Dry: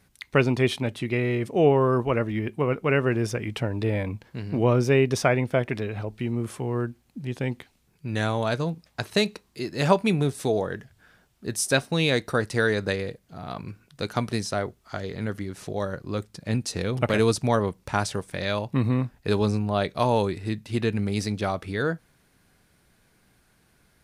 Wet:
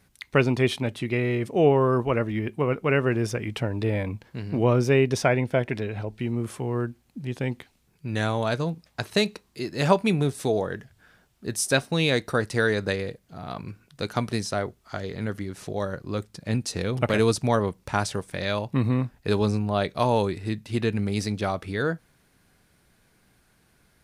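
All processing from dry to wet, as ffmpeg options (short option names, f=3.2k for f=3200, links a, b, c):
-filter_complex "[0:a]asettb=1/sr,asplit=3[a][b][c];[a]atrim=end=5.074[d];[b]atrim=start=5.07:end=6.22,asetpts=PTS-STARTPTS,afade=t=in:d=0.004:c=qsin,afade=t=out:st=1.146:d=0.004:c=qsin,highshelf=f=10k:g=-3.5,bandreject=f=1.2k:w=8.8[e];[c]atrim=start=6.216[f];[d][e]acrossfade=d=0.004:c1=hsin:c2=qsin[g];[g][f]acrossfade=d=0.004:c1=qsin:c2=hsin"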